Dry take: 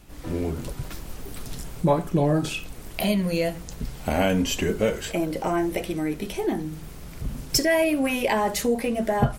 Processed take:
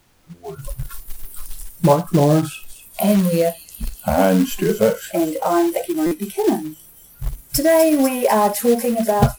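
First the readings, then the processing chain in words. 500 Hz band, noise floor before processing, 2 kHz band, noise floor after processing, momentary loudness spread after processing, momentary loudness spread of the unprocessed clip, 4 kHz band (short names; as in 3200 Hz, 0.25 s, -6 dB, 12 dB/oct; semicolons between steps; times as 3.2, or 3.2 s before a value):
+7.5 dB, -41 dBFS, 0.0 dB, -47 dBFS, 20 LU, 15 LU, -0.5 dB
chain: on a send: thin delay 0.248 s, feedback 80%, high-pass 3800 Hz, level -8 dB; on the sum: spectral noise reduction 28 dB; band shelf 3600 Hz -11.5 dB 2.3 oct; AGC gain up to 9 dB; short-mantissa float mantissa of 2-bit; added noise pink -58 dBFS; stuck buffer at 6.06, samples 256, times 8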